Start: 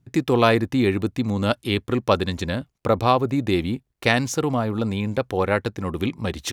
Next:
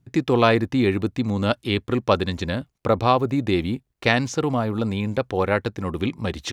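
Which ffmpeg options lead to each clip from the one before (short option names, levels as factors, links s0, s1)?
-filter_complex "[0:a]acrossover=split=6800[s0][s1];[s1]acompressor=threshold=0.002:ratio=4:attack=1:release=60[s2];[s0][s2]amix=inputs=2:normalize=0"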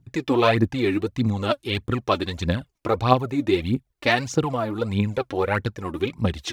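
-af "aphaser=in_gain=1:out_gain=1:delay=3.7:decay=0.65:speed=1.6:type=triangular,volume=0.708"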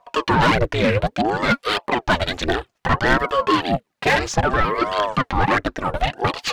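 -filter_complex "[0:a]asplit=2[s0][s1];[s1]highpass=f=720:p=1,volume=22.4,asoftclip=type=tanh:threshold=0.891[s2];[s0][s2]amix=inputs=2:normalize=0,lowpass=f=2400:p=1,volume=0.501,aeval=exprs='val(0)*sin(2*PI*500*n/s+500*0.7/0.61*sin(2*PI*0.61*n/s))':c=same,volume=0.708"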